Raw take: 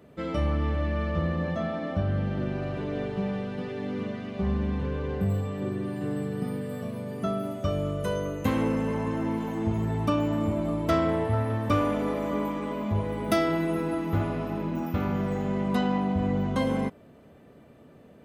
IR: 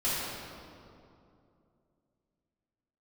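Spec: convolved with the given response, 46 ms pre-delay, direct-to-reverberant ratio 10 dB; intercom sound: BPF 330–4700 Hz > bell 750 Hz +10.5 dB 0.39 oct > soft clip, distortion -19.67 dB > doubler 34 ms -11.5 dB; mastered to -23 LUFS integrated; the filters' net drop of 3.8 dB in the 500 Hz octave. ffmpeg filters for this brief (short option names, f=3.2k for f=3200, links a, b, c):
-filter_complex "[0:a]equalizer=f=500:t=o:g=-8.5,asplit=2[a][b];[1:a]atrim=start_sample=2205,adelay=46[c];[b][c]afir=irnorm=-1:irlink=0,volume=-20dB[d];[a][d]amix=inputs=2:normalize=0,highpass=330,lowpass=4.7k,equalizer=f=750:t=o:w=0.39:g=10.5,asoftclip=threshold=-20.5dB,asplit=2[e][f];[f]adelay=34,volume=-11.5dB[g];[e][g]amix=inputs=2:normalize=0,volume=10.5dB"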